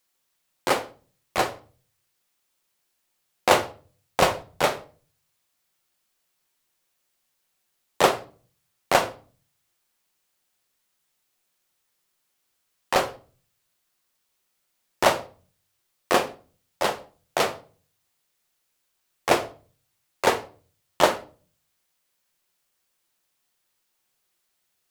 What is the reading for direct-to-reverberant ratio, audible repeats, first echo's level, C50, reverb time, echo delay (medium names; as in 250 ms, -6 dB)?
8.0 dB, no echo, no echo, 16.5 dB, 0.40 s, no echo